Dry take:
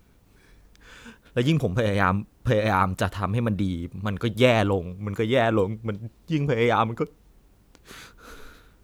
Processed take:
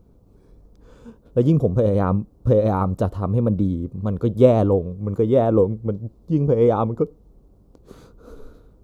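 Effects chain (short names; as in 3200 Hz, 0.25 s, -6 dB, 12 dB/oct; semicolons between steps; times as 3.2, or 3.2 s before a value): EQ curve 320 Hz 0 dB, 500 Hz +2 dB, 810 Hz -6 dB, 1200 Hz -9 dB, 1700 Hz -23 dB, 2700 Hz -22 dB, 4300 Hz -16 dB; gain +5 dB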